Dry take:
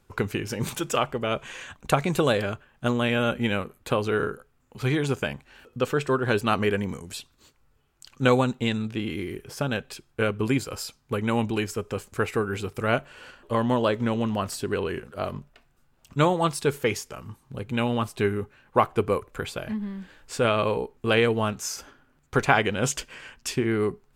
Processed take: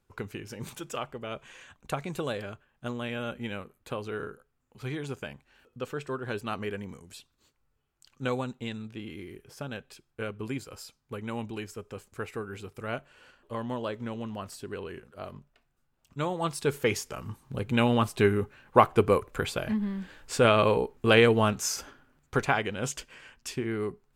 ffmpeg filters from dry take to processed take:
-af "volume=1.5dB,afade=t=in:st=16.23:d=1.06:silence=0.251189,afade=t=out:st=21.78:d=0.8:silence=0.375837"

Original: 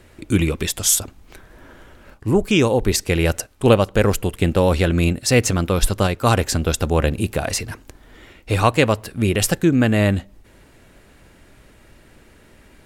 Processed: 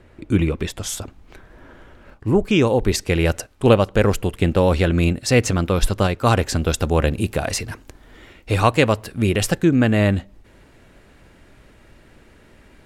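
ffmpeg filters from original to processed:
-af "asetnsamples=n=441:p=0,asendcmd='0.99 lowpass f 3100;2.67 lowpass f 5200;6.56 lowpass f 9200;9.37 lowpass f 5200',lowpass=f=1.8k:p=1"

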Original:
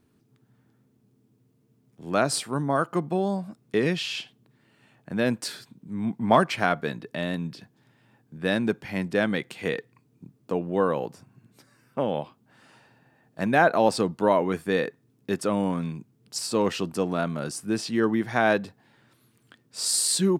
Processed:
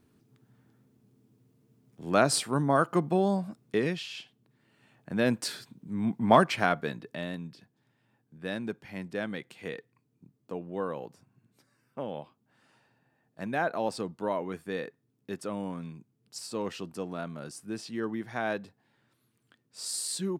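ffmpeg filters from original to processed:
-af "volume=9dB,afade=t=out:st=3.46:d=0.62:silence=0.316228,afade=t=in:st=4.08:d=1.32:silence=0.354813,afade=t=out:st=6.4:d=1.13:silence=0.354813"

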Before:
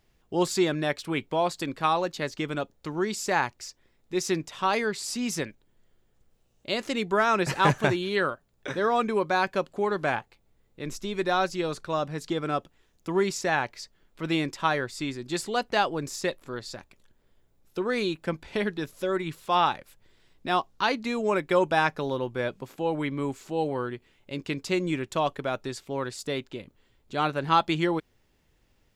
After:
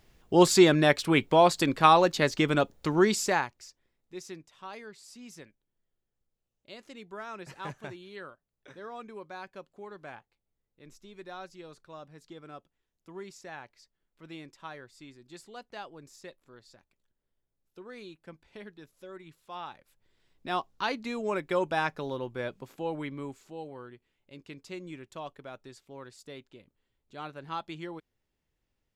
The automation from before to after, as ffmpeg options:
-af "volume=18dB,afade=t=out:st=3.06:d=0.4:silence=0.223872,afade=t=out:st=3.46:d=0.96:silence=0.298538,afade=t=in:st=19.67:d=0.91:silence=0.237137,afade=t=out:st=22.83:d=0.82:silence=0.354813"

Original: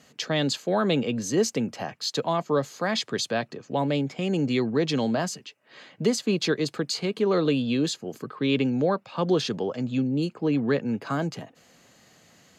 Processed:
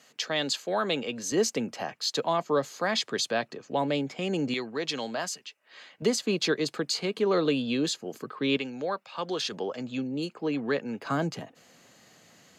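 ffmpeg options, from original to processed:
-af "asetnsamples=n=441:p=0,asendcmd='1.32 highpass f 310;4.54 highpass f 1000;6.02 highpass f 290;8.57 highpass f 1100;9.52 highpass f 490;11.06 highpass f 120',highpass=f=670:p=1"

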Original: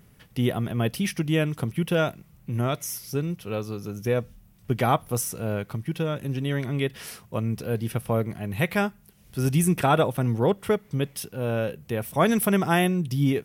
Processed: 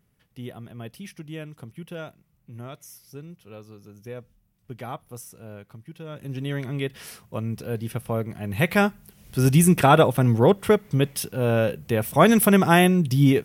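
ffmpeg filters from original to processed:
-af "volume=5dB,afade=t=in:st=6.02:d=0.4:silence=0.281838,afade=t=in:st=8.3:d=0.55:silence=0.446684"

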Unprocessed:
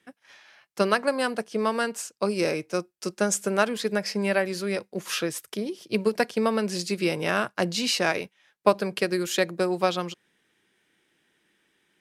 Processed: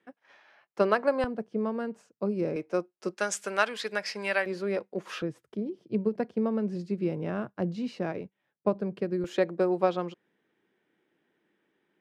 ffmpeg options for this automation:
-af "asetnsamples=n=441:p=0,asendcmd='1.24 bandpass f 150;2.56 bandpass f 530;3.17 bandpass f 1900;4.46 bandpass f 540;5.22 bandpass f 140;9.24 bandpass f 410',bandpass=f=560:t=q:w=0.54:csg=0"

